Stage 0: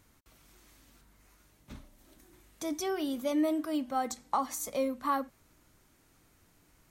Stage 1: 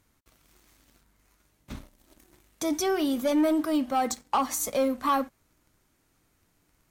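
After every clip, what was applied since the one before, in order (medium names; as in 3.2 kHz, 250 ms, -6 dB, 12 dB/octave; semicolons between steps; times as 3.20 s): waveshaping leveller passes 2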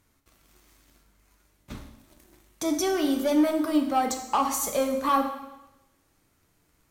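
plate-style reverb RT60 1 s, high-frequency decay 1×, DRR 4 dB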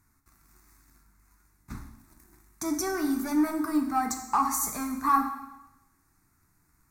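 static phaser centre 1.3 kHz, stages 4; trim +1.5 dB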